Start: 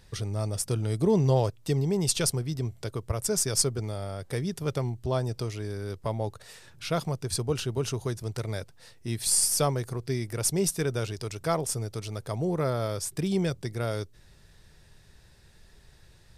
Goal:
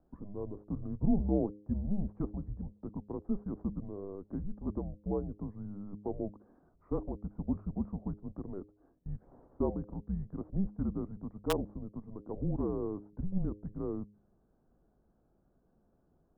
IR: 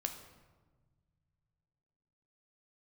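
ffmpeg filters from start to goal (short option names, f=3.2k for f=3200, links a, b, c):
-filter_complex "[0:a]highpass=f=180:t=q:w=0.5412,highpass=f=180:t=q:w=1.307,lowpass=f=2.1k:t=q:w=0.5176,lowpass=f=2.1k:t=q:w=0.7071,lowpass=f=2.1k:t=q:w=1.932,afreqshift=-200,equalizer=f=1.1k:t=o:w=0.77:g=2.5,acrossover=split=790[a][b];[b]acrusher=bits=3:mix=0:aa=0.000001[c];[a][c]amix=inputs=2:normalize=0,bandreject=f=103.4:t=h:w=4,bandreject=f=206.8:t=h:w=4,bandreject=f=310.2:t=h:w=4,bandreject=f=413.6:t=h:w=4,bandreject=f=517:t=h:w=4,volume=-3dB"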